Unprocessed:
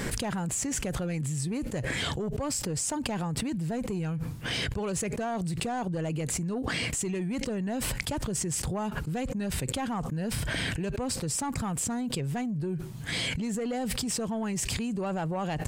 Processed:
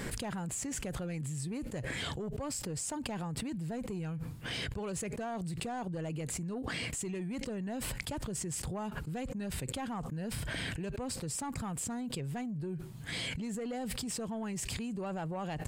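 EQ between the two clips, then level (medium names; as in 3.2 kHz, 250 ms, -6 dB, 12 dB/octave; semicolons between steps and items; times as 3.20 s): peaking EQ 5.9 kHz -3.5 dB 0.26 oct; -6.5 dB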